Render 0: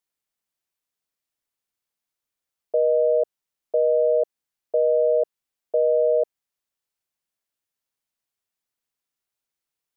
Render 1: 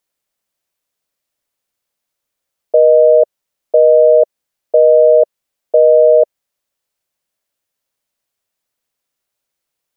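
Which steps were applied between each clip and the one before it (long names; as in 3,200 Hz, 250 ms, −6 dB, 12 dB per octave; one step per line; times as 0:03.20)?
parametric band 570 Hz +6 dB 0.4 octaves
level +8 dB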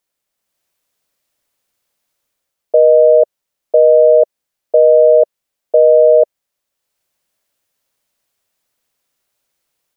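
automatic gain control gain up to 6 dB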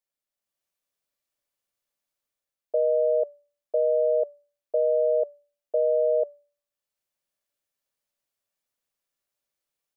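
tuned comb filter 580 Hz, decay 0.41 s, mix 70%
level −4.5 dB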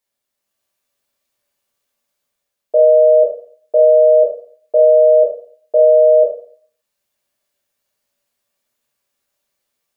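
dense smooth reverb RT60 0.51 s, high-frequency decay 0.75×, pre-delay 0 ms, DRR −1 dB
level +8 dB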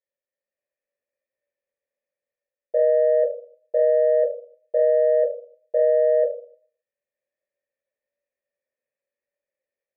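in parallel at −10.5 dB: soft clipping −13 dBFS, distortion −10 dB
on the sum: formant resonators in series e
level −1 dB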